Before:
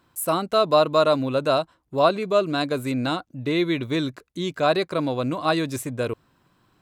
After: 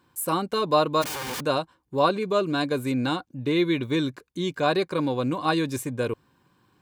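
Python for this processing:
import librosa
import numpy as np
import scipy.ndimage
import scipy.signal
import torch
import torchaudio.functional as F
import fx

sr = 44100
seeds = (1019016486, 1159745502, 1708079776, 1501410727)

y = fx.overflow_wrap(x, sr, gain_db=26.0, at=(1.01, 1.43), fade=0.02)
y = fx.notch_comb(y, sr, f0_hz=660.0)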